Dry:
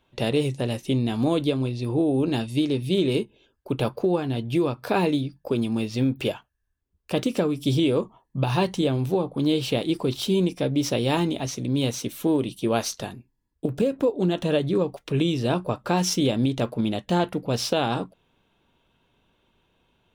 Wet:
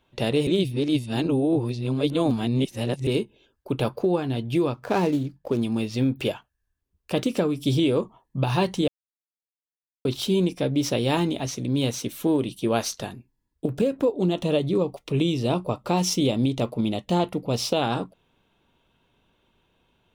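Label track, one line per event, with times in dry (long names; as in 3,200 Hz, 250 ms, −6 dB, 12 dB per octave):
0.470000	3.070000	reverse
4.740000	5.630000	running median over 15 samples
8.880000	10.050000	silence
14.110000	17.820000	parametric band 1,600 Hz −12.5 dB 0.29 octaves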